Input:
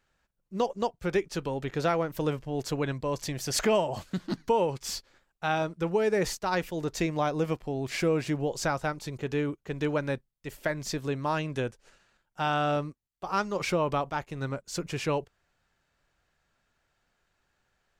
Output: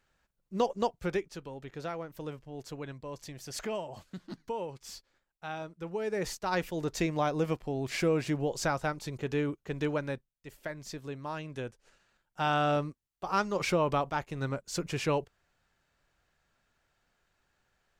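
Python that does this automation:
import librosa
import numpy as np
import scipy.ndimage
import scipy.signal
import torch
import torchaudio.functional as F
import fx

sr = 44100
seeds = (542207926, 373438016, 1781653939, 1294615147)

y = fx.gain(x, sr, db=fx.line((1.0, -0.5), (1.4, -11.0), (5.77, -11.0), (6.6, -1.5), (9.78, -1.5), (10.53, -9.0), (11.39, -9.0), (12.51, -0.5)))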